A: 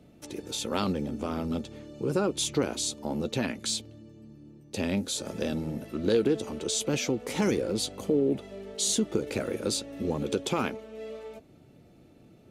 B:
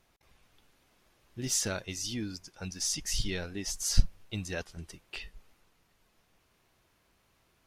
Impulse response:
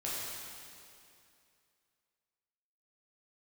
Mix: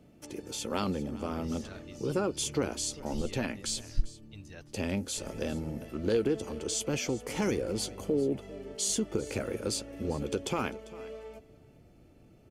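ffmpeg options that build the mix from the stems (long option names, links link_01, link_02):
-filter_complex "[0:a]bandreject=frequency=3800:width=6.1,volume=-2.5dB,asplit=2[link_01][link_02];[link_02]volume=-19dB[link_03];[1:a]acrossover=split=3800[link_04][link_05];[link_05]acompressor=threshold=-40dB:ratio=4:attack=1:release=60[link_06];[link_04][link_06]amix=inputs=2:normalize=0,volume=-13dB[link_07];[link_03]aecho=0:1:397:1[link_08];[link_01][link_07][link_08]amix=inputs=3:normalize=0,asubboost=boost=2.5:cutoff=97"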